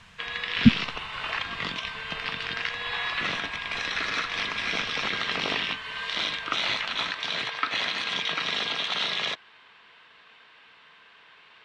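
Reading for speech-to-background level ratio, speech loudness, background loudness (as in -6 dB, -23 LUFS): 6.0 dB, -22.0 LUFS, -28.0 LUFS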